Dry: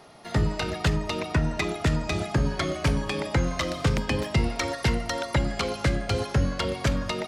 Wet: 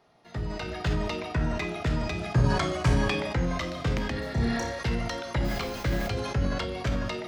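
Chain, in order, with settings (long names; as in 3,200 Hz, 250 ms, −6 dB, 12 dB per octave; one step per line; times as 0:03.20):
0:05.44–0:06.06: background noise pink −39 dBFS
parametric band 9,600 Hz −9 dB 1.1 octaves
0:04.20–0:04.79: flutter between parallel walls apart 5.2 metres, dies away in 0.41 s
automatic gain control gain up to 8 dB
0:02.35–0:02.90: octave-band graphic EQ 125/1,000/8,000 Hz +7/+7/+10 dB
0:04.13–0:04.71: healed spectral selection 1,000–5,500 Hz after
tuned comb filter 61 Hz, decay 0.46 s, harmonics all, mix 60%
convolution reverb, pre-delay 3 ms, DRR 10 dB
level that may fall only so fast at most 32 dB per second
level −8 dB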